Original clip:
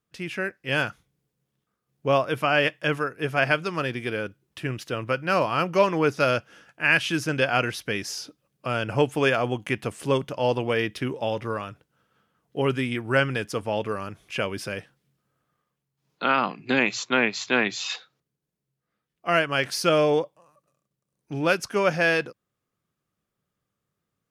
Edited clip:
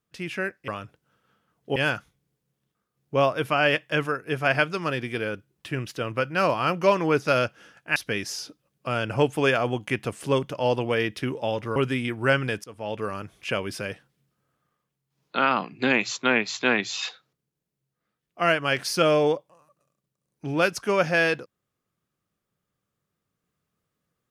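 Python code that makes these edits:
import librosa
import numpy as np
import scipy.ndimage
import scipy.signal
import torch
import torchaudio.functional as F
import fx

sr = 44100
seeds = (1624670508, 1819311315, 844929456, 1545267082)

y = fx.edit(x, sr, fx.cut(start_s=6.88, length_s=0.87),
    fx.move(start_s=11.55, length_s=1.08, to_s=0.68),
    fx.fade_in_from(start_s=13.51, length_s=0.45, floor_db=-22.5), tone=tone)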